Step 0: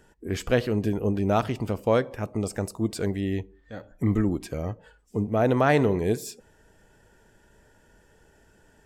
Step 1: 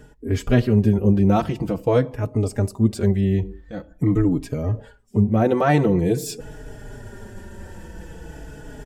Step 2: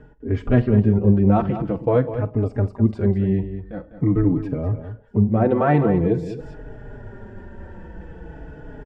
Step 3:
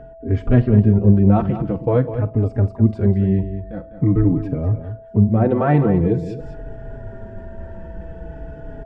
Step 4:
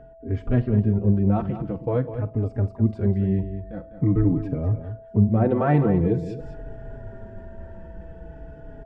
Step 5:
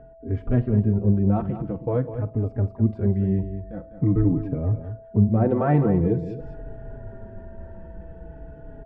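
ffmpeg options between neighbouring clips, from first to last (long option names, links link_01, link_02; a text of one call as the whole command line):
ffmpeg -i in.wav -filter_complex "[0:a]lowshelf=frequency=410:gain=9.5,areverse,acompressor=mode=upward:threshold=-23dB:ratio=2.5,areverse,asplit=2[link_01][link_02];[link_02]adelay=4.3,afreqshift=-0.46[link_03];[link_01][link_03]amix=inputs=2:normalize=1,volume=3dB" out.wav
ffmpeg -i in.wav -af "lowpass=1800,aecho=1:1:48|202:0.133|0.282" out.wav
ffmpeg -i in.wav -af "lowshelf=frequency=210:gain=6.5,aeval=exprs='val(0)+0.0126*sin(2*PI*660*n/s)':channel_layout=same,volume=-1dB" out.wav
ffmpeg -i in.wav -af "dynaudnorm=framelen=360:gausssize=11:maxgain=11.5dB,volume=-7dB" out.wav
ffmpeg -i in.wav -af "lowpass=frequency=1700:poles=1" out.wav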